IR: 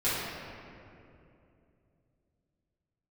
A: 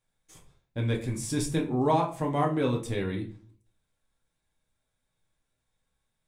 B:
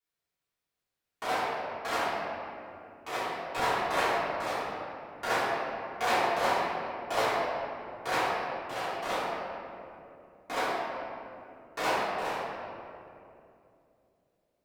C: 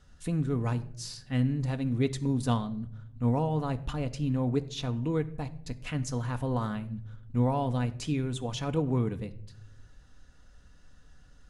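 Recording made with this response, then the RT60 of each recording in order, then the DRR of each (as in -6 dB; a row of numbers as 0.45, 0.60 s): B; 0.40, 2.7, 0.70 s; -0.5, -14.0, 7.5 dB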